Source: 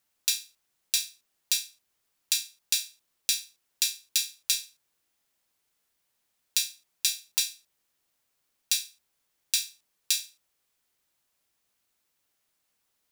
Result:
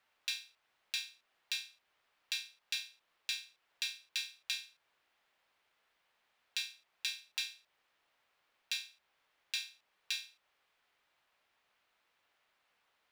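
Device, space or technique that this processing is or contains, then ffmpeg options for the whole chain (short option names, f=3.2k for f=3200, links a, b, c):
DJ mixer with the lows and highs turned down: -filter_complex "[0:a]acrossover=split=500 3500:gain=0.251 1 0.0794[a][b][c];[a][b][c]amix=inputs=3:normalize=0,alimiter=level_in=5dB:limit=-24dB:level=0:latency=1:release=399,volume=-5dB,volume=8dB"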